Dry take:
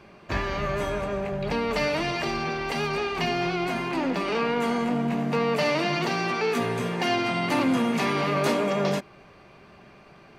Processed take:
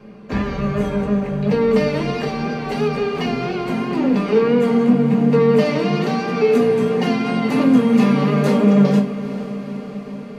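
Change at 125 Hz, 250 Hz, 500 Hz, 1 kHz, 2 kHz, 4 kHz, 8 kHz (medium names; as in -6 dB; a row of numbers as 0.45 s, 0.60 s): +10.5 dB, +12.0 dB, +9.0 dB, +2.0 dB, 0.0 dB, 0.0 dB, no reading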